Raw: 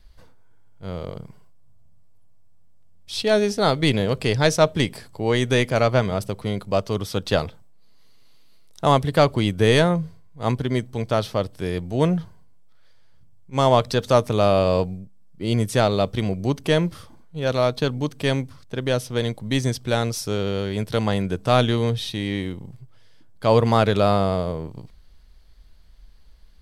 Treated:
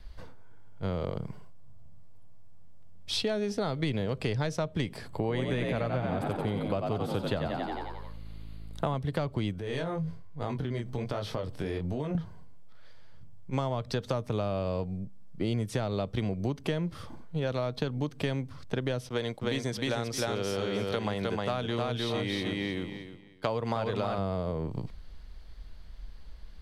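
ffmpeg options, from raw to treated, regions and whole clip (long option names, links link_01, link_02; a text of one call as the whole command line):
ffmpeg -i in.wav -filter_complex "[0:a]asettb=1/sr,asplit=3[link_01][link_02][link_03];[link_01]atrim=end=5.084[link_04];[link_02]atrim=start=5.08:end=8.95,asetpts=PTS-STARTPTS,afade=type=in:duration=0.004:curve=qsin,afade=type=out:start_time=3.866:duration=0.004:curve=qsin,equalizer=frequency=5600:width_type=o:width=0.45:gain=-12.5,asplit=9[link_05][link_06][link_07][link_08][link_09][link_10][link_11][link_12][link_13];[link_06]adelay=89,afreqshift=54,volume=-5dB[link_14];[link_07]adelay=178,afreqshift=108,volume=-9.9dB[link_15];[link_08]adelay=267,afreqshift=162,volume=-14.8dB[link_16];[link_09]adelay=356,afreqshift=216,volume=-19.6dB[link_17];[link_10]adelay=445,afreqshift=270,volume=-24.5dB[link_18];[link_11]adelay=534,afreqshift=324,volume=-29.4dB[link_19];[link_12]adelay=623,afreqshift=378,volume=-34.3dB[link_20];[link_13]adelay=712,afreqshift=432,volume=-39.2dB[link_21];[link_05][link_14][link_15][link_16][link_17][link_18][link_19][link_20][link_21]amix=inputs=9:normalize=0,atrim=end_sample=170667[link_22];[link_03]atrim=start=8.946[link_23];[link_04][link_22]acrossfade=duration=0.004:curve1=hsin:curve2=qsin[link_24];[link_24][link_23]acrossfade=duration=0.004:curve1=qsin:curve2=hsin,asettb=1/sr,asplit=3[link_25][link_26][link_27];[link_25]atrim=end=9.584[link_28];[link_26]atrim=start=9.58:end=12.15,asetpts=PTS-STARTPTS,afade=type=in:duration=0.004:curve=qsin,afade=type=out:start_time=2.566:duration=0.004:curve=qsin,flanger=delay=20:depth=5.8:speed=1.2,acompressor=threshold=-32dB:ratio=6:attack=3.2:release=140:knee=1:detection=peak[link_29];[link_27]atrim=start=12.146[link_30];[link_28][link_29]acrossfade=duration=0.004:curve1=hsin:curve2=qsin[link_31];[link_31][link_30]acrossfade=duration=0.004:curve1=qsin:curve2=hsin,asettb=1/sr,asplit=3[link_32][link_33][link_34];[link_32]atrim=end=19.094[link_35];[link_33]atrim=start=19.09:end=24.18,asetpts=PTS-STARTPTS,afade=type=in:duration=0.004:curve=qsin,afade=type=out:start_time=5.086:duration=0.004:curve=qsin,agate=range=-33dB:threshold=-35dB:ratio=3:release=100:detection=peak,lowshelf=frequency=240:gain=-10.5,aecho=1:1:309|618|927:0.708|0.135|0.0256,atrim=end_sample=224469[link_36];[link_34]atrim=start=24.176[link_37];[link_35][link_36]acrossfade=duration=0.004:curve1=hsin:curve2=qsin[link_38];[link_38][link_37]acrossfade=duration=0.004:curve1=qsin:curve2=hsin,acrossover=split=220[link_39][link_40];[link_40]acompressor=threshold=-21dB:ratio=3[link_41];[link_39][link_41]amix=inputs=2:normalize=0,highshelf=frequency=5800:gain=-10.5,acompressor=threshold=-33dB:ratio=6,volume=5dB" out.wav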